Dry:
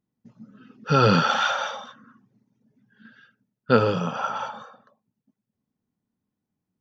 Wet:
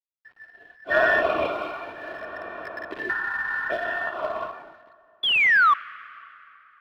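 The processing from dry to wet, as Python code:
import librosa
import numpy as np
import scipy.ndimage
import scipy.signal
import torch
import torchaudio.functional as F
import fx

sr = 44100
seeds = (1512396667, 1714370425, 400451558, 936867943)

y = fx.band_invert(x, sr, width_hz=2000)
y = fx.spec_repair(y, sr, seeds[0], start_s=3.13, length_s=0.78, low_hz=770.0, high_hz=2200.0, source='after')
y = scipy.signal.sosfilt(scipy.signal.butter(4, 67.0, 'highpass', fs=sr, output='sos'), y)
y = fx.high_shelf(y, sr, hz=3100.0, db=-4.5)
y = y + 0.44 * np.pad(y, (int(2.9 * sr / 1000.0), 0))[:len(y)]
y = fx.spec_paint(y, sr, seeds[1], shape='fall', start_s=5.23, length_s=0.51, low_hz=1100.0, high_hz=3500.0, level_db=-13.0)
y = fx.quant_companded(y, sr, bits=4)
y = fx.air_absorb(y, sr, metres=390.0)
y = fx.rev_plate(y, sr, seeds[2], rt60_s=3.5, hf_ratio=0.7, predelay_ms=0, drr_db=19.5)
y = fx.band_squash(y, sr, depth_pct=100, at=(1.45, 3.85))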